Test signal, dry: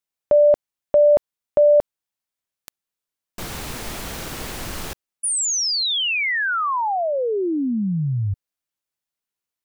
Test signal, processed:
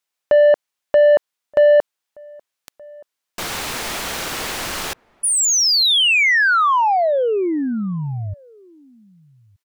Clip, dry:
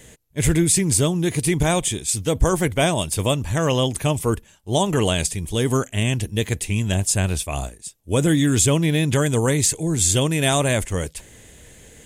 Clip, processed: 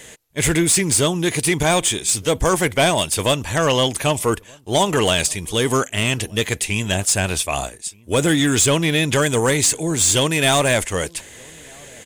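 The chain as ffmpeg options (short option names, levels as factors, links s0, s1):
-filter_complex "[0:a]asplit=2[s0][s1];[s1]highpass=f=720:p=1,volume=5.01,asoftclip=type=tanh:threshold=0.501[s2];[s0][s2]amix=inputs=2:normalize=0,lowpass=f=7500:p=1,volume=0.501,asplit=2[s3][s4];[s4]adelay=1224,volume=0.0447,highshelf=f=4000:g=-27.6[s5];[s3][s5]amix=inputs=2:normalize=0"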